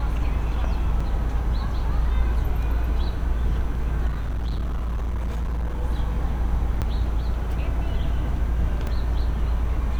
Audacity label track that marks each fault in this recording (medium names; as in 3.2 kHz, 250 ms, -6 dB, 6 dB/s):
1.000000	1.000000	dropout 4.6 ms
4.070000	5.830000	clipped -22.5 dBFS
6.810000	6.820000	dropout 7.8 ms
8.870000	8.870000	dropout 2.2 ms